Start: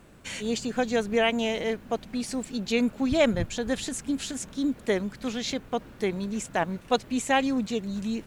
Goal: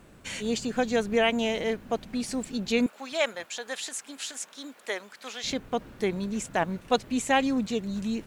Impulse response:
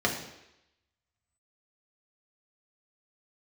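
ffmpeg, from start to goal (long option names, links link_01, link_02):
-filter_complex "[0:a]asettb=1/sr,asplit=3[link_01][link_02][link_03];[link_01]atrim=end=2.864[link_04];[link_02]atrim=start=2.86:end=5.44,asetpts=PTS-STARTPTS,afade=type=in:duration=0.004:curve=qsin,afade=type=out:start_time=2.576:duration=0.004:curve=qsin,highpass=750[link_05];[link_03]atrim=start=5.436[link_06];[link_04][link_05]acrossfade=duration=0.004:curve1=hsin:curve2=qsin[link_07];[link_07][link_06]acrossfade=duration=0.004:curve1=qsin:curve2=hsin"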